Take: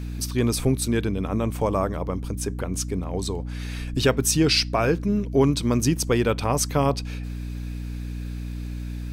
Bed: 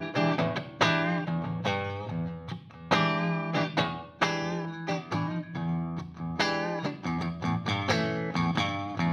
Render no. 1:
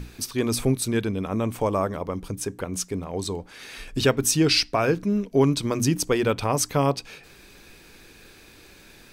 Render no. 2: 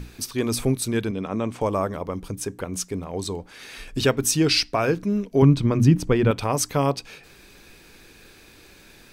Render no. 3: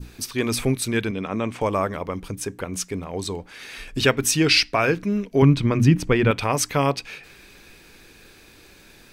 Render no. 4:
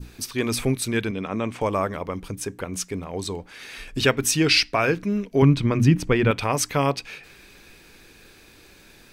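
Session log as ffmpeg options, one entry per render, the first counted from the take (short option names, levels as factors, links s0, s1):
-af "bandreject=f=60:t=h:w=6,bandreject=f=120:t=h:w=6,bandreject=f=180:t=h:w=6,bandreject=f=240:t=h:w=6,bandreject=f=300:t=h:w=6"
-filter_complex "[0:a]asettb=1/sr,asplit=3[s0][s1][s2];[s0]atrim=end=1.114[s3];[s1]atrim=start=1.11:end=1.61,asetpts=PTS-STARTPTS,afade=t=in:d=0.004:c=qsin,afade=t=out:st=0.496:d=0.004:c=qsin,highpass=120,lowpass=7000[s4];[s2]atrim=start=1.606[s5];[s3][s4]acrossfade=d=0.004:c1=hsin:c2=qsin[s6];[s6][s5]acrossfade=d=0.004:c1=qsin:c2=hsin,asettb=1/sr,asplit=3[s7][s8][s9];[s7]atrim=end=5.424[s10];[s8]atrim=start=5.42:end=6.31,asetpts=PTS-STARTPTS,afade=t=in:d=0.004:c=qsin,afade=t=out:st=0.886:d=0.004:c=qsin,bass=f=250:g=10,treble=f=4000:g=-12[s11];[s9]atrim=start=6.306[s12];[s10][s11]acrossfade=d=0.004:c1=hsin:c2=qsin[s13];[s13][s12]acrossfade=d=0.004:c1=qsin:c2=hsin"
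-af "adynamicequalizer=threshold=0.00708:dfrequency=2200:dqfactor=1:tfrequency=2200:tqfactor=1:attack=5:release=100:ratio=0.375:range=4:mode=boostabove:tftype=bell"
-af "volume=0.891"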